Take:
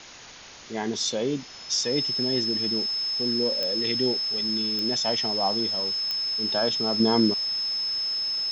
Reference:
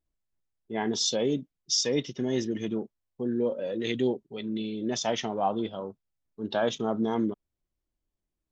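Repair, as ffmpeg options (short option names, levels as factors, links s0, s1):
-af "adeclick=t=4,bandreject=f=5200:w=30,afwtdn=0.0089,asetnsamples=n=441:p=0,asendcmd='7 volume volume -6dB',volume=1"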